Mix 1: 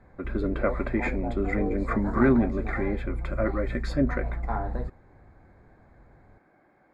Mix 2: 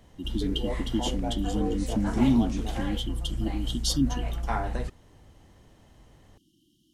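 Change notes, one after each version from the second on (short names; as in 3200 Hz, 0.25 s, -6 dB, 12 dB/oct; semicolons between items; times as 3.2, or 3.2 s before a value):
speech: add brick-wall FIR band-stop 360–2800 Hz; master: remove running mean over 15 samples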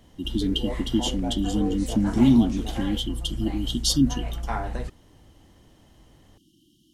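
speech +5.0 dB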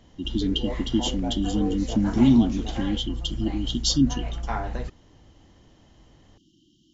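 master: add brick-wall FIR low-pass 7500 Hz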